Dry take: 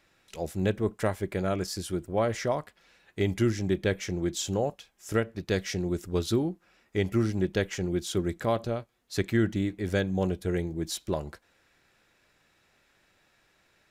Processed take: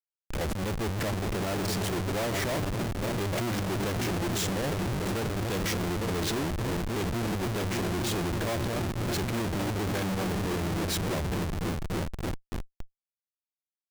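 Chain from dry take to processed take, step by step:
echo whose low-pass opens from repeat to repeat 287 ms, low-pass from 200 Hz, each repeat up 1 octave, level −6 dB
comparator with hysteresis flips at −39 dBFS
brickwall limiter −32 dBFS, peak gain reduction 8.5 dB
level +4 dB

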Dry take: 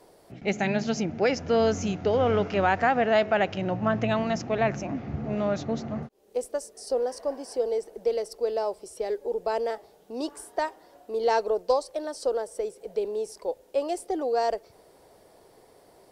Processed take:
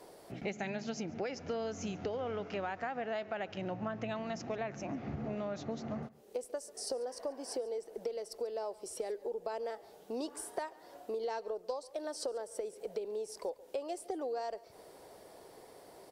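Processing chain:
low-shelf EQ 120 Hz −8 dB
downward compressor 8 to 1, threshold −37 dBFS, peak gain reduction 18.5 dB
on a send: single-tap delay 141 ms −21.5 dB
on the sum: level +1.5 dB

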